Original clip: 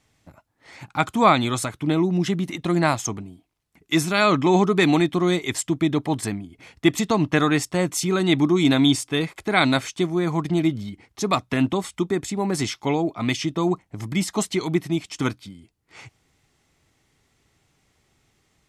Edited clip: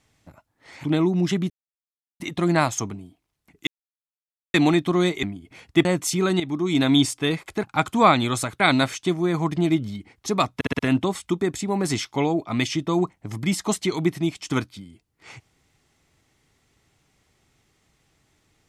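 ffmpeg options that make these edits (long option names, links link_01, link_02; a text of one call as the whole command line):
ffmpeg -i in.wav -filter_complex "[0:a]asplit=14[link_01][link_02][link_03][link_04][link_05][link_06][link_07][link_08][link_09][link_10][link_11][link_12][link_13][link_14];[link_01]atrim=end=0.842[link_15];[link_02]atrim=start=1.808:end=2.47,asetpts=PTS-STARTPTS,afade=type=out:start_time=0.658:duration=0.004:curve=hsin,apad=pad_dur=0.7[link_16];[link_03]atrim=start=2.47:end=3.94,asetpts=PTS-STARTPTS,afade=type=in:duration=0.004:curve=hsin,afade=type=out:start_time=1.466:duration=0.004:curve=hsin[link_17];[link_04]atrim=start=3.94:end=4.81,asetpts=PTS-STARTPTS,volume=0[link_18];[link_05]atrim=start=4.81:end=5.502,asetpts=PTS-STARTPTS,afade=type=in:duration=0.004:curve=hsin[link_19];[link_06]atrim=start=6.308:end=6.932[link_20];[link_07]atrim=start=7.748:end=8.3,asetpts=PTS-STARTPTS,afade=type=out:start_time=0.548:duration=0.004:curve=hsin:silence=0.223872[link_21];[link_08]atrim=start=8.3:end=9.532,asetpts=PTS-STARTPTS,afade=type=in:duration=0.57:silence=0.223872[link_22];[link_09]atrim=start=0.838:end=1.812[link_23];[link_10]atrim=start=9.528:end=11.542[link_24];[link_11]atrim=start=11.478:end=11.542[link_25];[link_12]atrim=start=11.478:end=11.542[link_26];[link_13]atrim=start=11.478:end=11.542[link_27];[link_14]atrim=start=11.478[link_28];[link_16][link_17][link_18][link_19]concat=n=4:v=0:a=1[link_29];[link_15][link_29]acrossfade=duration=0.004:curve1=hsin:curve2=hsin[link_30];[link_30][link_20]acrossfade=duration=0.004:curve1=hsin:curve2=hsin[link_31];[link_21][link_22]concat=n=2:v=0:a=1[link_32];[link_31][link_32]acrossfade=duration=0.004:curve1=hsin:curve2=hsin[link_33];[link_33][link_23]acrossfade=duration=0.004:curve1=hsin:curve2=hsin[link_34];[link_34][link_24]acrossfade=duration=0.004:curve1=hsin:curve2=hsin[link_35];[link_35][link_25]acrossfade=duration=0.004:curve1=hsin:curve2=hsin[link_36];[link_36][link_26]acrossfade=duration=0.004:curve1=hsin:curve2=hsin[link_37];[link_37][link_27]acrossfade=duration=0.004:curve1=hsin:curve2=hsin[link_38];[link_38][link_28]acrossfade=duration=0.004:curve1=hsin:curve2=hsin" out.wav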